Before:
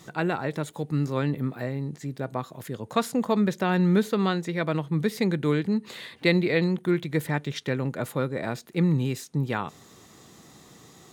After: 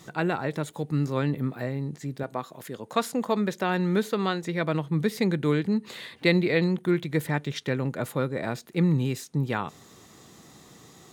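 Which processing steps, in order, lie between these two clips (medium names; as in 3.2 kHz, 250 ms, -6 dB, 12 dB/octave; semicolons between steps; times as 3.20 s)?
2.23–4.44 s: peaking EQ 73 Hz -12.5 dB 2.1 oct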